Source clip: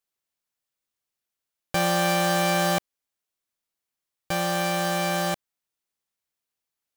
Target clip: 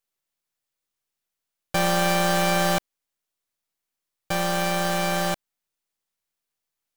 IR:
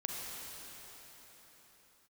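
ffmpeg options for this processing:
-af "aeval=exprs='if(lt(val(0),0),0.447*val(0),val(0))':c=same,volume=3.5dB"

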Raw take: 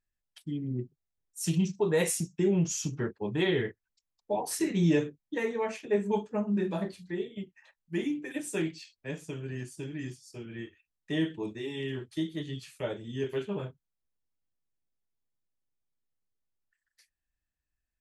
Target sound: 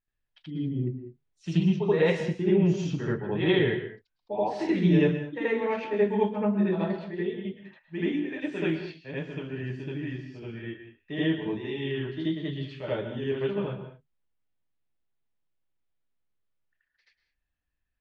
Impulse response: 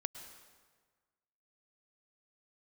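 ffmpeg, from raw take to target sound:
-filter_complex "[0:a]lowpass=f=3.7k:w=0.5412,lowpass=f=3.7k:w=1.3066,asplit=2[a][b];[1:a]atrim=start_sample=2205,afade=t=out:st=0.27:d=0.01,atrim=end_sample=12348,adelay=80[c];[b][c]afir=irnorm=-1:irlink=0,volume=8dB[d];[a][d]amix=inputs=2:normalize=0,volume=-3.5dB"

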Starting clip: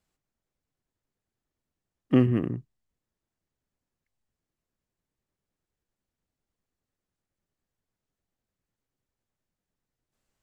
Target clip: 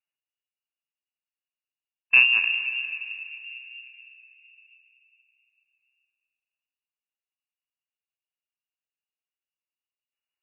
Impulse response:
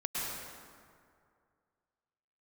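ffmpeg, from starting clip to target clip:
-filter_complex "[0:a]agate=range=-17dB:threshold=-33dB:ratio=16:detection=peak,asplit=2[a][b];[1:a]atrim=start_sample=2205,asetrate=23814,aresample=44100[c];[b][c]afir=irnorm=-1:irlink=0,volume=-17.5dB[d];[a][d]amix=inputs=2:normalize=0,lowpass=f=2.5k:t=q:w=0.5098,lowpass=f=2.5k:t=q:w=0.6013,lowpass=f=2.5k:t=q:w=0.9,lowpass=f=2.5k:t=q:w=2.563,afreqshift=-2900,volume=2dB"

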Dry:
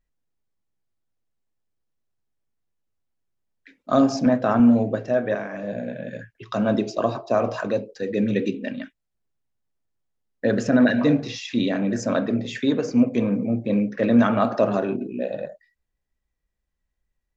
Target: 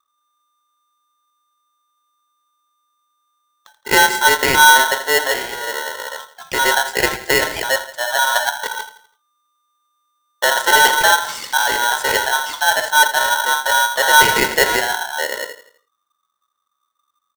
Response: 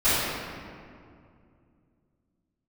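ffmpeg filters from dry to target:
-filter_complex "[0:a]acrossover=split=200|1000|2900[a][b][c][d];[c]aeval=exprs='val(0)*gte(abs(val(0)),0.00631)':c=same[e];[a][b][e][d]amix=inputs=4:normalize=0,asetrate=53981,aresample=44100,atempo=0.816958,asuperstop=centerf=1500:order=4:qfactor=6.6,aecho=1:1:83|166|249|332:0.2|0.0858|0.0369|0.0159,aeval=exprs='val(0)*sgn(sin(2*PI*1200*n/s))':c=same,volume=5dB"

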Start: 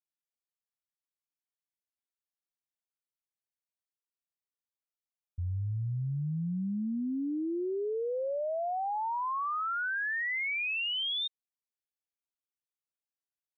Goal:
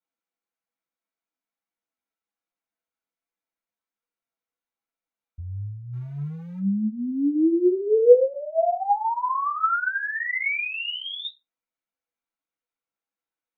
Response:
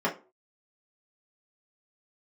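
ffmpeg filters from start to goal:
-filter_complex "[0:a]asettb=1/sr,asplit=3[a][b][c];[a]atrim=end=5.934[d];[b]atrim=start=5.93:end=6.59,asetpts=PTS-STARTPTS,afade=t=in:d=0.004:c=qsin,afade=t=out:st=0.656:d=0.004:c=qsin,aeval=exprs='val(0)+0.5*0.00282*sgn(val(0))':c=same[e];[c]atrim=start=6.586[f];[d][e]acrossfade=d=0.004:c1=hsin:c2=qsin[g];[g][f]acrossfade=d=0.004:c1=qsin:c2=hsin,asubboost=boost=4.5:cutoff=87,asplit=3[h][i][j];[h]afade=t=out:st=7.34:d=0.02[k];[i]acontrast=72,afade=t=in:st=7.34:d=0.02,afade=t=out:st=8.19:d=0.02[l];[j]afade=t=in:st=8.19:d=0.02[m];[k][l][m]amix=inputs=3:normalize=0,flanger=delay=5.2:depth=9.1:regen=32:speed=1.2:shape=triangular[n];[1:a]atrim=start_sample=2205,asetrate=52920,aresample=44100[o];[n][o]afir=irnorm=-1:irlink=0"

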